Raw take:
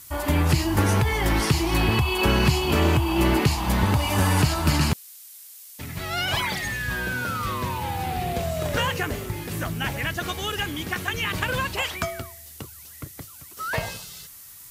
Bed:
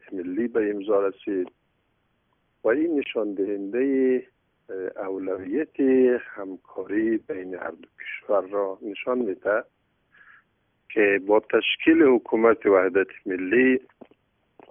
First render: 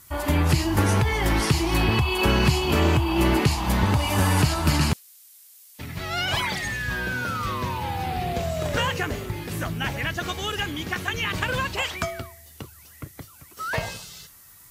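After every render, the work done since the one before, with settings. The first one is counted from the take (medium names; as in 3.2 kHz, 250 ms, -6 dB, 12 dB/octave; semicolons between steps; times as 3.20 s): noise print and reduce 6 dB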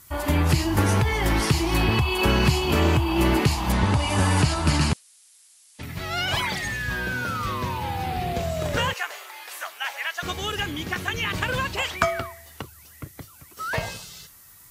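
3.72–5.83 s: steep low-pass 11 kHz 96 dB/octave; 8.93–10.23 s: high-pass 720 Hz 24 dB/octave; 12.01–12.62 s: peaking EQ 1.2 kHz +9.5 dB 2.4 oct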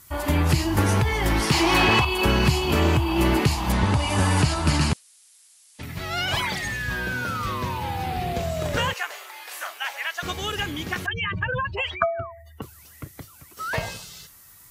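1.51–2.05 s: overdrive pedal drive 18 dB, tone 3.3 kHz, clips at -8 dBFS; 9.43–9.84 s: doubling 39 ms -6 dB; 11.06–12.62 s: spectral contrast enhancement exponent 2.4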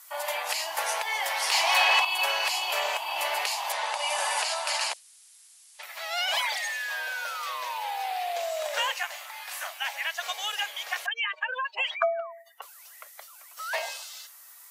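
steep high-pass 590 Hz 48 dB/octave; dynamic bell 1.3 kHz, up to -6 dB, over -42 dBFS, Q 2.1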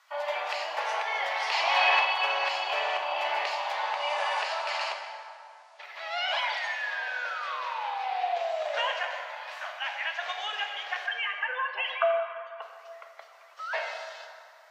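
distance through air 220 m; plate-style reverb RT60 2.4 s, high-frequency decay 0.6×, DRR 3 dB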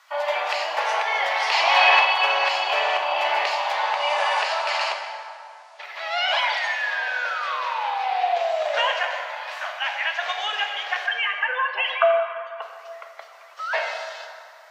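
trim +7 dB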